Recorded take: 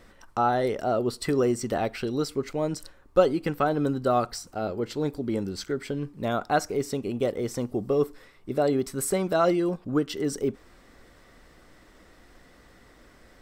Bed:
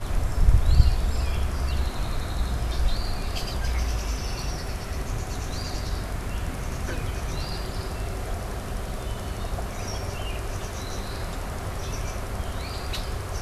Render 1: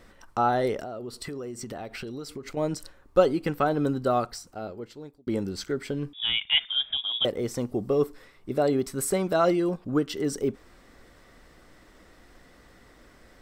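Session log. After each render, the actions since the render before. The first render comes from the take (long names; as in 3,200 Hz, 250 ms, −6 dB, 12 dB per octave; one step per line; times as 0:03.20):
0:00.81–0:02.57: downward compressor 8 to 1, threshold −33 dBFS
0:03.98–0:05.27: fade out
0:06.13–0:07.25: voice inversion scrambler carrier 3,600 Hz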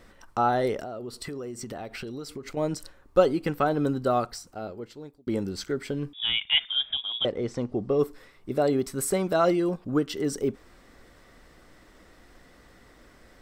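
0:06.96–0:07.99: high-frequency loss of the air 110 metres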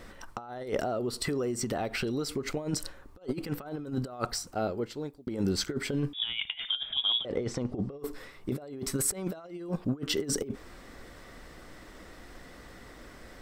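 compressor whose output falls as the input rises −31 dBFS, ratio −0.5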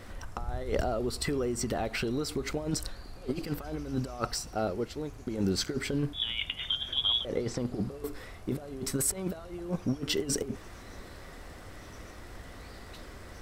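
mix in bed −18.5 dB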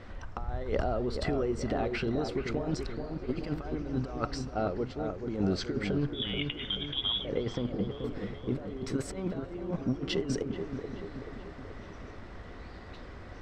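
high-frequency loss of the air 160 metres
on a send: delay with a low-pass on its return 431 ms, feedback 54%, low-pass 1,600 Hz, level −6 dB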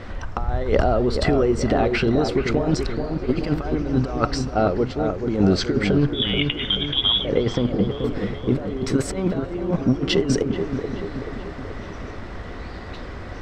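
level +11.5 dB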